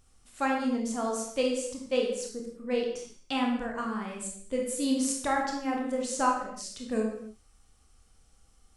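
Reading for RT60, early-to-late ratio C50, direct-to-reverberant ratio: no single decay rate, 3.5 dB, -1.0 dB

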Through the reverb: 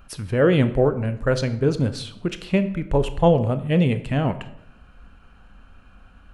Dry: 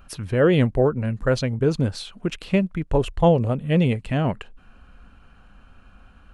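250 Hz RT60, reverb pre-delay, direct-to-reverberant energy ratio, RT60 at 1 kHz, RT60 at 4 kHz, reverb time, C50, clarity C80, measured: 0.85 s, 20 ms, 10.5 dB, 0.70 s, 0.55 s, 0.75 s, 13.5 dB, 16.0 dB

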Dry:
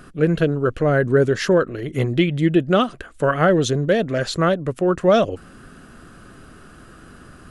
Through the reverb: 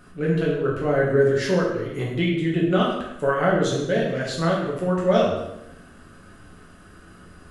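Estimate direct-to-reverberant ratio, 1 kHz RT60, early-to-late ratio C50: -5.0 dB, 0.85 s, 2.5 dB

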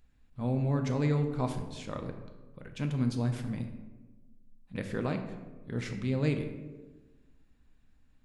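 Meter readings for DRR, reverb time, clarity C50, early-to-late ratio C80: 5.0 dB, 1.3 s, 8.0 dB, 9.5 dB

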